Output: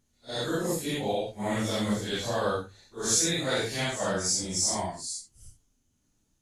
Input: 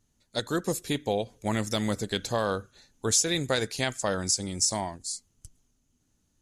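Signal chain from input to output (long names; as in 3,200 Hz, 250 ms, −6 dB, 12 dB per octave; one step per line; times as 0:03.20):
random phases in long frames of 200 ms
mains-hum notches 50/100/150 Hz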